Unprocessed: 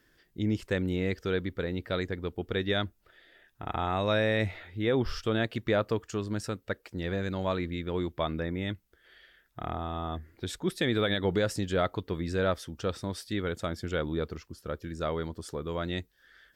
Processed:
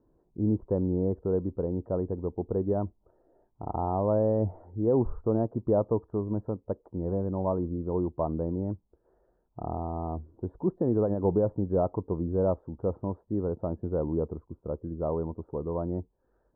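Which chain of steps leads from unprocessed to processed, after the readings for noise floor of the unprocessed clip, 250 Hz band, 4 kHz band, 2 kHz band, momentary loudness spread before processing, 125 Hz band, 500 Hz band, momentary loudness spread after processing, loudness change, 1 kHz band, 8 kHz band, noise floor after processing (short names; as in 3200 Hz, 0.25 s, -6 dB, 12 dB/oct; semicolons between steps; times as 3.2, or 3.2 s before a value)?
-68 dBFS, +2.5 dB, under -40 dB, under -25 dB, 10 LU, +2.0 dB, +2.5 dB, 10 LU, +1.5 dB, -0.5 dB, under -30 dB, -72 dBFS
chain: elliptic low-pass 970 Hz, stop band 60 dB; gain +3 dB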